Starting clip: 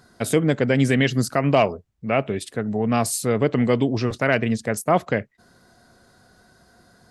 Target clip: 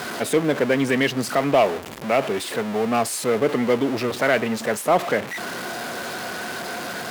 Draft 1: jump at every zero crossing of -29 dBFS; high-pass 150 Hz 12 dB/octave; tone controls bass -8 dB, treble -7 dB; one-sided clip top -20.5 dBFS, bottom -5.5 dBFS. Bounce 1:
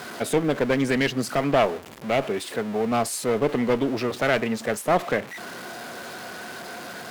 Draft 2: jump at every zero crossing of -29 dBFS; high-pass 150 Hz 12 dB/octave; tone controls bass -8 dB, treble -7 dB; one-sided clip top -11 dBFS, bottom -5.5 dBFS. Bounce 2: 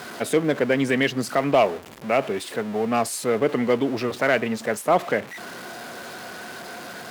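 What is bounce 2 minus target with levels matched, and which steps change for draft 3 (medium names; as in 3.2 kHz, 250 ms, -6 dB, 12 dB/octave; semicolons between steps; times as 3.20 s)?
jump at every zero crossing: distortion -6 dB
change: jump at every zero crossing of -22 dBFS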